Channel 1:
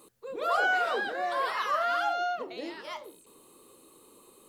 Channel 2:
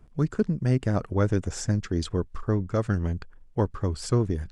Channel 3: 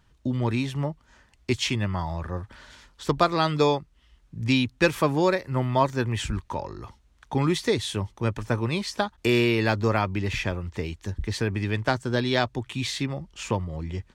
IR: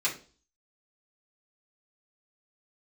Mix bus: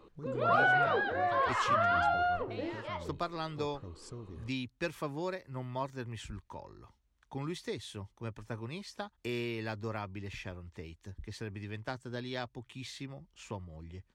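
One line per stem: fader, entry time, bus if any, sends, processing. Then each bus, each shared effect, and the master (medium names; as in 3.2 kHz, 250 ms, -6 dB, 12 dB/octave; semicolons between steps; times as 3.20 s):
+0.5 dB, 0.00 s, no send, Gaussian low-pass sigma 2.4 samples
-13.5 dB, 0.00 s, no send, peak limiter -19.5 dBFS, peak gain reduction 8.5 dB; compression 1.5:1, threshold -37 dBFS, peak gain reduction 5.5 dB
-15.0 dB, 0.00 s, no send, none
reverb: none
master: none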